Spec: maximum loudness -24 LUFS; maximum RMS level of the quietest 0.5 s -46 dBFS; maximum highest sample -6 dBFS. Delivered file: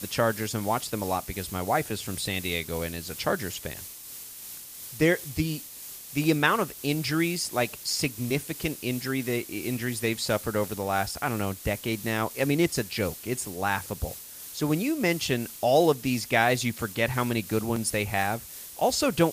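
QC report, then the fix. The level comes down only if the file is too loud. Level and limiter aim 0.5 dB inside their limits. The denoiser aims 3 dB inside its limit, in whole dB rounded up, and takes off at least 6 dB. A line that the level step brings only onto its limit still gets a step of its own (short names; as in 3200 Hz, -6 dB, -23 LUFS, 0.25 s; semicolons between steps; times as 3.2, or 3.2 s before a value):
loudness -27.5 LUFS: OK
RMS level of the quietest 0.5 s -43 dBFS: fail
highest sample -7.0 dBFS: OK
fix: denoiser 6 dB, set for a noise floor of -43 dBFS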